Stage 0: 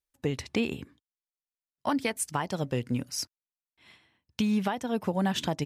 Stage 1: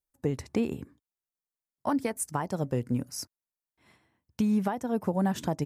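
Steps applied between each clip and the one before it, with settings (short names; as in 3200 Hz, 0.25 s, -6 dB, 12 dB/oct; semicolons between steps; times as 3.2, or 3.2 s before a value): bell 3200 Hz -13.5 dB 1.5 oct; gain +1 dB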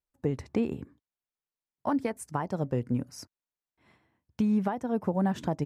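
LPF 2700 Hz 6 dB/oct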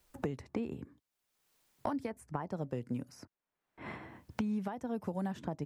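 three-band squash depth 100%; gain -8.5 dB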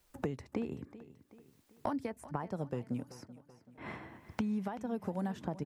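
feedback echo 0.382 s, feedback 47%, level -16.5 dB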